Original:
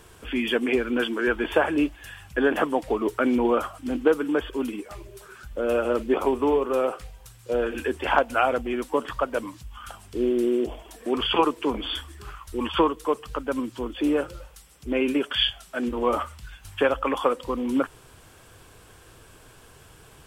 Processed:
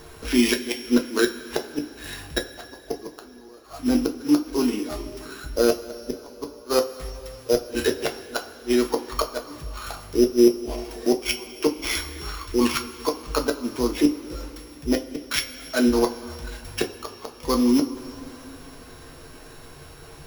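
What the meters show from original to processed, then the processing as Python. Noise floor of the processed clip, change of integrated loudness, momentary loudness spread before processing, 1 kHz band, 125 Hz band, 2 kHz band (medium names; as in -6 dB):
-45 dBFS, +1.0 dB, 15 LU, -6.0 dB, +2.5 dB, -2.5 dB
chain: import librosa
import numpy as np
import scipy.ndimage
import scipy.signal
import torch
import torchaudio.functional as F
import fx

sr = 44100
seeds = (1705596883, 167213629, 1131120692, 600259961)

y = np.r_[np.sort(x[:len(x) // 8 * 8].reshape(-1, 8), axis=1).ravel(), x[len(x) // 8 * 8:]]
y = fx.gate_flip(y, sr, shuts_db=-15.0, range_db=-35)
y = fx.rev_double_slope(y, sr, seeds[0], early_s=0.21, late_s=3.4, knee_db=-20, drr_db=2.0)
y = y * librosa.db_to_amplitude(5.0)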